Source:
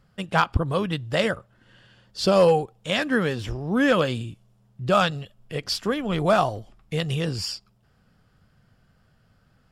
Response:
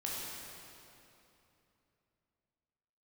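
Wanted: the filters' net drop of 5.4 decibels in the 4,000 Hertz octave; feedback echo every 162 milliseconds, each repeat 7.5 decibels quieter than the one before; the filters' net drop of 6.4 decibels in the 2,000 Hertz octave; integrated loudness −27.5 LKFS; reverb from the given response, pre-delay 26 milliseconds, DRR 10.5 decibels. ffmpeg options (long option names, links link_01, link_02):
-filter_complex "[0:a]equalizer=frequency=2000:width_type=o:gain=-8,equalizer=frequency=4000:width_type=o:gain=-4.5,aecho=1:1:162|324|486|648|810:0.422|0.177|0.0744|0.0312|0.0131,asplit=2[link_01][link_02];[1:a]atrim=start_sample=2205,adelay=26[link_03];[link_02][link_03]afir=irnorm=-1:irlink=0,volume=-13.5dB[link_04];[link_01][link_04]amix=inputs=2:normalize=0,volume=-3.5dB"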